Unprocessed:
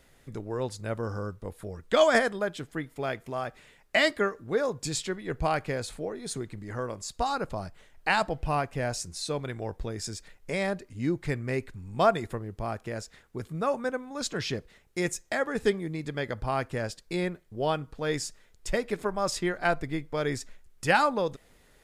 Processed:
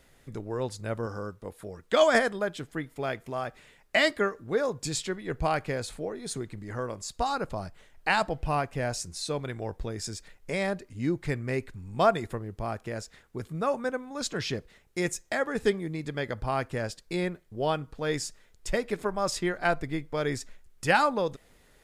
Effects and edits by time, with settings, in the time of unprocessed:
0:01.06–0:02.02: low-shelf EQ 100 Hz −11 dB

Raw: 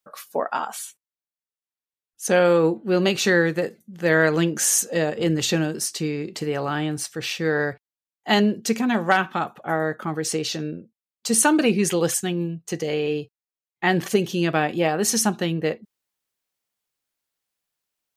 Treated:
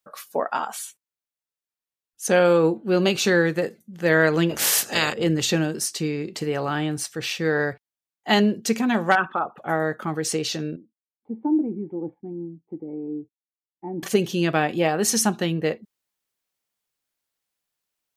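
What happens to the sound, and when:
0:02.40–0:03.45: notch filter 1,900 Hz
0:04.49–0:05.12: ceiling on every frequency bin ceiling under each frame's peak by 26 dB
0:09.15–0:09.58: spectral envelope exaggerated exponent 2
0:10.76–0:14.03: formant resonators in series u

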